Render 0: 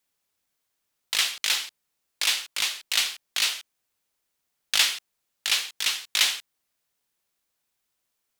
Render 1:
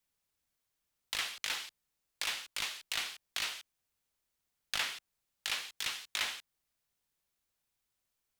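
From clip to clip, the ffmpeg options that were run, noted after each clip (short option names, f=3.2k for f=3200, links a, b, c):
-filter_complex "[0:a]acrossover=split=300|2100[a][b][c];[a]lowshelf=f=130:g=10.5[d];[c]acompressor=threshold=-30dB:ratio=6[e];[d][b][e]amix=inputs=3:normalize=0,volume=-6dB"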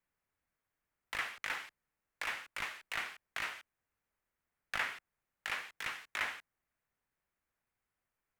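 -af "highshelf=f=2.7k:t=q:w=1.5:g=-11,volume=1dB"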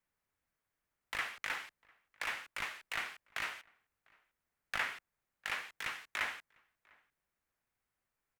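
-filter_complex "[0:a]asplit=2[a][b];[b]adelay=699.7,volume=-27dB,highshelf=f=4k:g=-15.7[c];[a][c]amix=inputs=2:normalize=0"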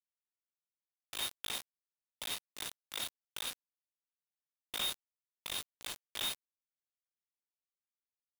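-af "aeval=exprs='abs(val(0))':c=same,lowpass=f=3.1k:t=q:w=0.5098,lowpass=f=3.1k:t=q:w=0.6013,lowpass=f=3.1k:t=q:w=0.9,lowpass=f=3.1k:t=q:w=2.563,afreqshift=-3700,acrusher=bits=5:mix=0:aa=0.000001"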